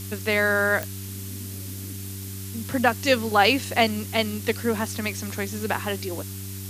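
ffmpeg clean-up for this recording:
-af "adeclick=t=4,bandreject=f=97.3:t=h:w=4,bandreject=f=194.6:t=h:w=4,bandreject=f=291.9:t=h:w=4,bandreject=f=389.2:t=h:w=4,afftdn=nr=30:nf=-35"

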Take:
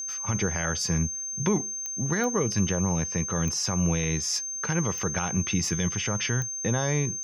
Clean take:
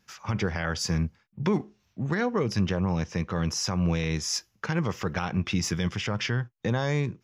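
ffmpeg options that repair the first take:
-af "adeclick=t=4,bandreject=f=6.3k:w=30"

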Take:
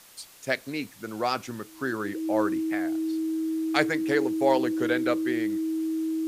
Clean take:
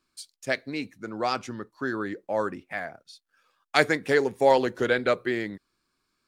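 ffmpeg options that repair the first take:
-af "adeclick=t=4,bandreject=f=320:w=30,afwtdn=0.0028,asetnsamples=n=441:p=0,asendcmd='2.75 volume volume 3.5dB',volume=0dB"

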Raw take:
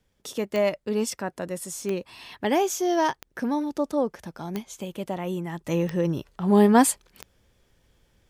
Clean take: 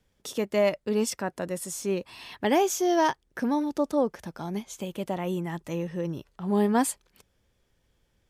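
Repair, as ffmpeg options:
-af "adeclick=t=4,asetnsamples=n=441:p=0,asendcmd='5.67 volume volume -6.5dB',volume=0dB"

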